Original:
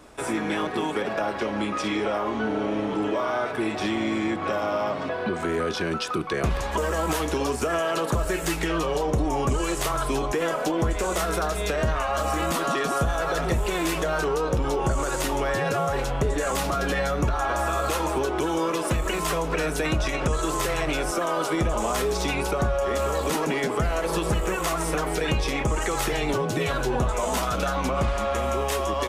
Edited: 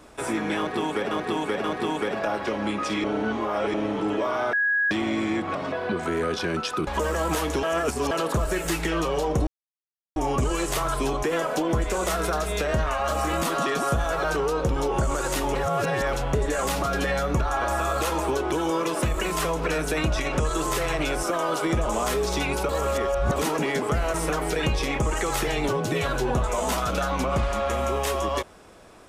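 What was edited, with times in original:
0.58–1.11 loop, 3 plays
1.98–2.68 reverse
3.47–3.85 bleep 1660 Hz -19.5 dBFS
4.49–4.92 cut
6.24–6.65 cut
7.41–7.89 reverse
9.25 insert silence 0.69 s
13.33–14.12 cut
15.43–16.01 reverse
22.57–23.24 reverse
24.02–24.79 cut

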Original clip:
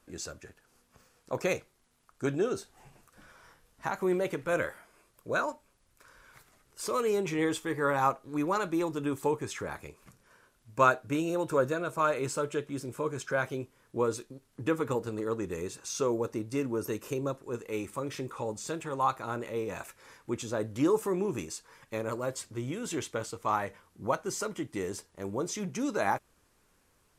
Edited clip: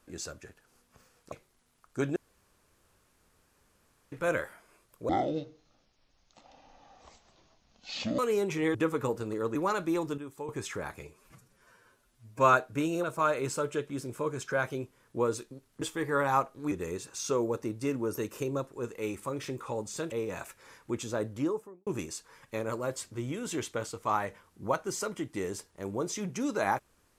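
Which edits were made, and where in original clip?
1.32–1.57 cut
2.41–4.37 room tone
5.34–6.95 speed 52%
7.51–8.41 swap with 14.61–15.42
9.03–9.34 gain -11 dB
9.86–10.88 stretch 1.5×
11.38–11.83 cut
18.82–19.51 cut
20.56–21.26 studio fade out

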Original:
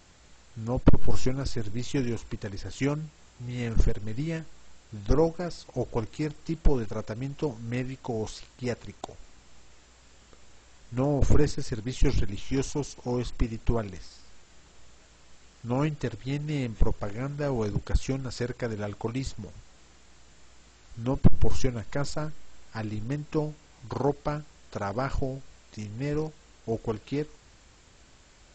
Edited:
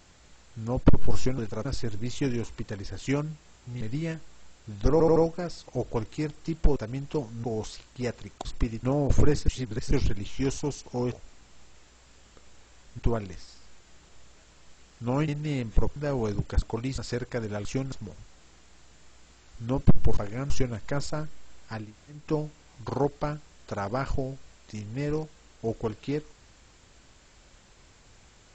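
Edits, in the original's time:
3.54–4.06 cut
5.17 stutter 0.08 s, 4 plays
6.77–7.04 move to 1.38
7.72–8.07 cut
9.08–10.95 swap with 13.24–13.62
11.6–12.03 reverse
15.91–16.32 cut
17–17.33 move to 21.54
17.99–18.26 swap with 18.93–19.29
22.87–23.23 room tone, crossfade 0.24 s

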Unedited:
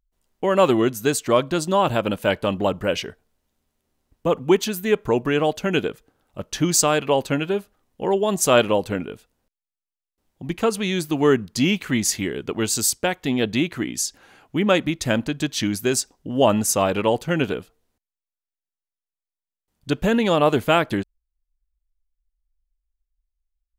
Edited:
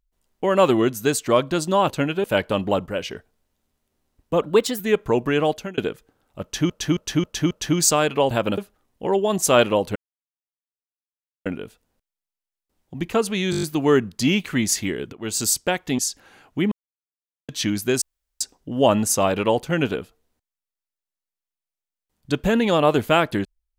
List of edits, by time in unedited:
1.9–2.17 swap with 7.22–7.56
2.79–3.04 gain -4.5 dB
4.35–4.79 speed 117%
5.51–5.77 fade out
6.42–6.69 loop, 5 plays
8.94 insert silence 1.50 s
10.99 stutter 0.02 s, 7 plays
12.49–12.79 fade in, from -20.5 dB
13.35–13.96 cut
14.69–15.46 mute
15.99 insert room tone 0.39 s

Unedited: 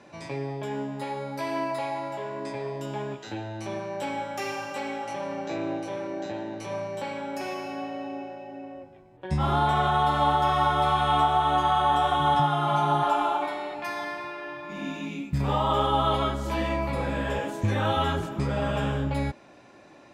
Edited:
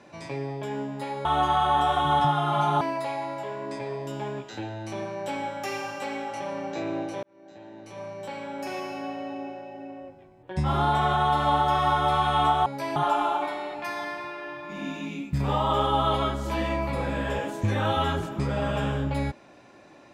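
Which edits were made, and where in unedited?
1.25–1.55 swap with 11.4–12.96
5.97–7.53 fade in

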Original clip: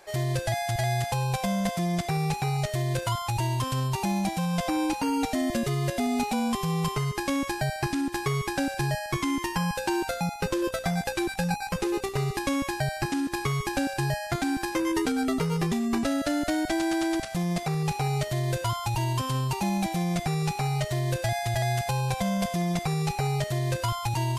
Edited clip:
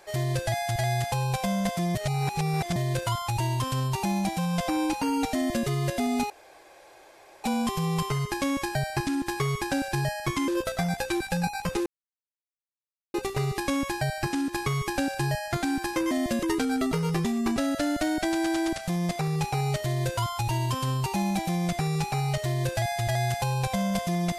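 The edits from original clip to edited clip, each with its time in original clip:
1.95–2.76 reverse
5.35–5.67 copy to 14.9
6.3 insert room tone 1.14 s
9.34–10.55 cut
11.93 insert silence 1.28 s

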